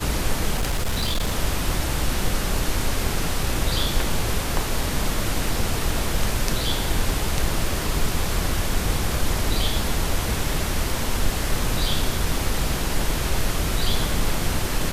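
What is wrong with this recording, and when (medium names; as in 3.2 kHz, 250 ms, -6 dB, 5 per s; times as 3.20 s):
0.55–1.36 s: clipped -18.5 dBFS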